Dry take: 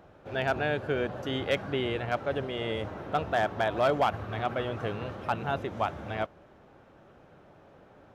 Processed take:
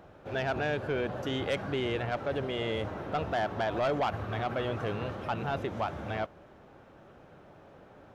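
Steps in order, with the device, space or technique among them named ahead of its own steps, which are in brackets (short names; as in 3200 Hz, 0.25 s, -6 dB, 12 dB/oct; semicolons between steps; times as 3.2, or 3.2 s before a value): soft clipper into limiter (soft clip -21.5 dBFS, distortion -16 dB; limiter -25 dBFS, peak gain reduction 3 dB); gain +1.5 dB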